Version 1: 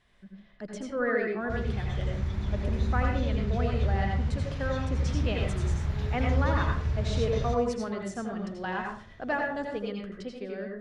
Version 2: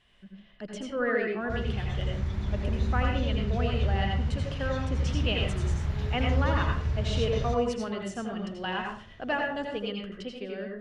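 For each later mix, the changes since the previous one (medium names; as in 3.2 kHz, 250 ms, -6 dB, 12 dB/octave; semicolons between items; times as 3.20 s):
speech: add peaking EQ 2.9 kHz +12.5 dB 0.28 oct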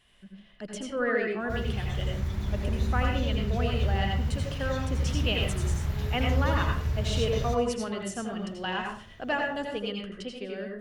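master: remove distance through air 77 m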